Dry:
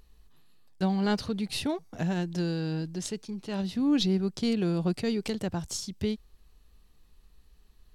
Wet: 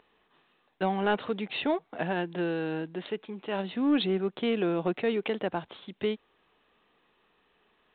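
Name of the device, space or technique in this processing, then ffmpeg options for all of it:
telephone: -af "highpass=390,lowpass=3200,asoftclip=type=tanh:threshold=0.0841,volume=2.24" -ar 8000 -c:a pcm_mulaw

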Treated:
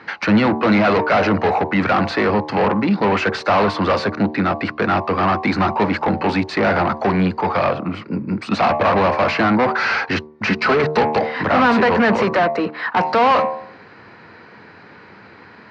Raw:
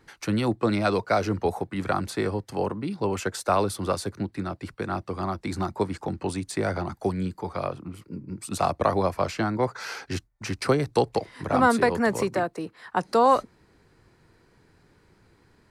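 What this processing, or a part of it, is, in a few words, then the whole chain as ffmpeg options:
overdrive pedal into a guitar cabinet: -filter_complex "[0:a]asettb=1/sr,asplit=3[s0][s1][s2];[s0]atrim=end=10.474[s3];[s1]atrim=start=10.47:end=11.01,asetpts=PTS-STARTPTS,afade=t=in:d=0.004:c=qsin,afade=t=out:st=0.536:d=0.004:c=qsin,aecho=1:1:4.7:0.8,atrim=end_sample=23814[s4];[s2]atrim=start=11.006[s5];[s3][s4]acrossfade=d=0.004:c1=hsin:c2=qsin[s6];[s6][s5]acrossfade=d=0.004:c1=qsin:c2=hsin,bandreject=f=76.07:t=h:w=4,bandreject=f=152.14:t=h:w=4,bandreject=f=228.21:t=h:w=4,bandreject=f=304.28:t=h:w=4,bandreject=f=380.35:t=h:w=4,bandreject=f=456.42:t=h:w=4,bandreject=f=532.49:t=h:w=4,bandreject=f=608.56:t=h:w=4,bandreject=f=684.63:t=h:w=4,bandreject=f=760.7:t=h:w=4,bandreject=f=836.77:t=h:w=4,bandreject=f=912.84:t=h:w=4,bandreject=f=988.91:t=h:w=4,bandreject=f=1064.98:t=h:w=4,bandreject=f=1141.05:t=h:w=4,asplit=2[s7][s8];[s8]highpass=f=720:p=1,volume=31.6,asoftclip=type=tanh:threshold=0.422[s9];[s7][s9]amix=inputs=2:normalize=0,lowpass=f=4400:p=1,volume=0.501,highpass=88,equalizer=f=92:t=q:w=4:g=5,equalizer=f=210:t=q:w=4:g=6,equalizer=f=370:t=q:w=4:g=-4,equalizer=f=3400:t=q:w=4:g=-7,lowpass=f=4000:w=0.5412,lowpass=f=4000:w=1.3066"

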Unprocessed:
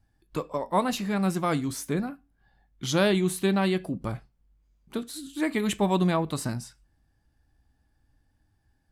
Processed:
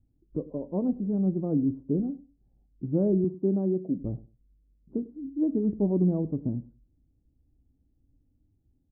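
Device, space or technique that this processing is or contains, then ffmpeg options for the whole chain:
under water: -filter_complex "[0:a]asettb=1/sr,asplit=3[s0][s1][s2];[s0]atrim=end=3.244[s3];[s1]atrim=start=3.24:end=3.98,asetpts=PTS-STARTPTS,afade=t=in:d=0.004:c=qsin,afade=t=out:st=0.736:d=0.004:c=qsin,highpass=170[s4];[s2]atrim=start=3.976[s5];[s3][s4]acrossfade=d=0.004:c1=hsin:c2=qsin[s6];[s6][s5]acrossfade=d=0.004:c1=qsin:c2=hsin,lowpass=f=480:w=0.5412,lowpass=f=480:w=1.3066,equalizer=f=270:t=o:w=0.33:g=5.5,asplit=2[s7][s8];[s8]adelay=99,lowpass=f=820:p=1,volume=0.126,asplit=2[s9][s10];[s10]adelay=99,lowpass=f=820:p=1,volume=0.2[s11];[s7][s9][s11]amix=inputs=3:normalize=0"

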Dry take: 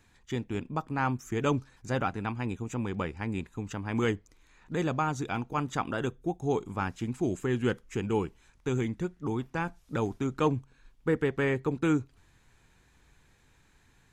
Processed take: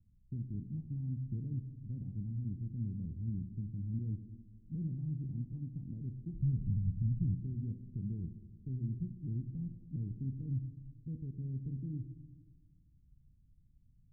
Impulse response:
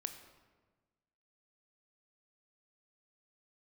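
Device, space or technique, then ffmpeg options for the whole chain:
club heard from the street: -filter_complex "[0:a]asplit=3[s0][s1][s2];[s0]afade=t=out:st=6.33:d=0.02[s3];[s1]asubboost=boost=8:cutoff=170,afade=t=in:st=6.33:d=0.02,afade=t=out:st=7.33:d=0.02[s4];[s2]afade=t=in:st=7.33:d=0.02[s5];[s3][s4][s5]amix=inputs=3:normalize=0,alimiter=limit=0.0708:level=0:latency=1:release=64,lowpass=f=190:w=0.5412,lowpass=f=190:w=1.3066[s6];[1:a]atrim=start_sample=2205[s7];[s6][s7]afir=irnorm=-1:irlink=0,volume=1.19"

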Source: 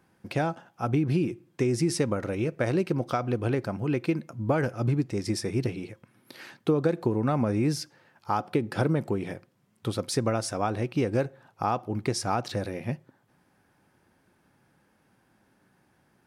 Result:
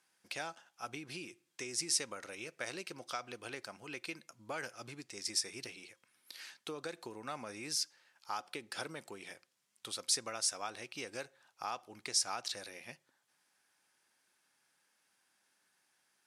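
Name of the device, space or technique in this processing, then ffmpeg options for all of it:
piezo pickup straight into a mixer: -af "lowpass=8100,aderivative,volume=1.78"

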